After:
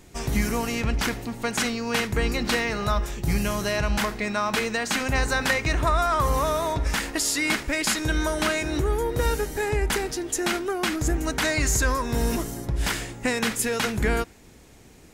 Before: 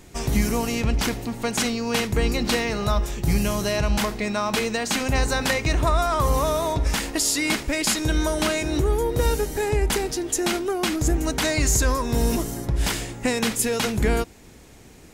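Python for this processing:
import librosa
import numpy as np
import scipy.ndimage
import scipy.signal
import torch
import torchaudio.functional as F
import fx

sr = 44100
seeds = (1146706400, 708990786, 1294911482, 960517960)

y = fx.dynamic_eq(x, sr, hz=1600.0, q=1.2, threshold_db=-40.0, ratio=4.0, max_db=6)
y = F.gain(torch.from_numpy(y), -3.0).numpy()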